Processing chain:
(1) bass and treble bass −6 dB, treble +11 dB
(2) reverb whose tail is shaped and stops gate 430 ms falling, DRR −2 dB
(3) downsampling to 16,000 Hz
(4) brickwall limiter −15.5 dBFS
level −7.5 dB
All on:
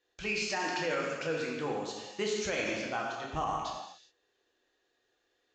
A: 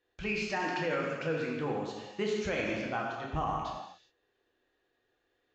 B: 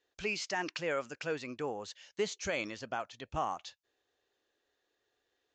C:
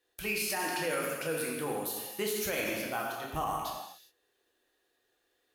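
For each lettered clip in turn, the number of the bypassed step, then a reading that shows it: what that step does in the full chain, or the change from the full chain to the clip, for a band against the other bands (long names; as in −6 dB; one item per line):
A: 1, 8 kHz band −9.5 dB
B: 2, change in crest factor +3.5 dB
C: 3, 8 kHz band +5.5 dB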